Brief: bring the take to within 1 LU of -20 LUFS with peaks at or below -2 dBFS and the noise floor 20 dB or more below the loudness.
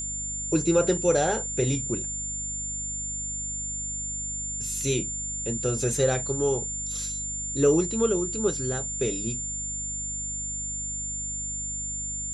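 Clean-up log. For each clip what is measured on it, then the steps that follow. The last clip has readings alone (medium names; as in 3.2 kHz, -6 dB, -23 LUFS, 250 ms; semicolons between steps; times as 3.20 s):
hum 50 Hz; highest harmonic 250 Hz; hum level -38 dBFS; steady tone 7.2 kHz; tone level -30 dBFS; loudness -27.0 LUFS; peak level -10.0 dBFS; loudness target -20.0 LUFS
-> hum notches 50/100/150/200/250 Hz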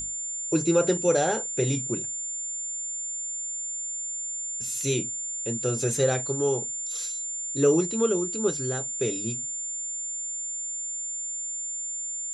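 hum not found; steady tone 7.2 kHz; tone level -30 dBFS
-> band-stop 7.2 kHz, Q 30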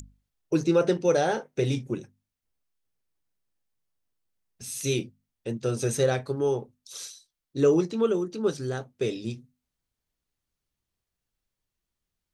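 steady tone not found; loudness -27.0 LUFS; peak level -11.5 dBFS; loudness target -20.0 LUFS
-> trim +7 dB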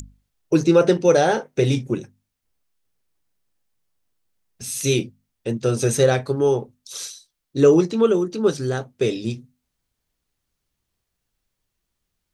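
loudness -20.0 LUFS; peak level -4.5 dBFS; noise floor -79 dBFS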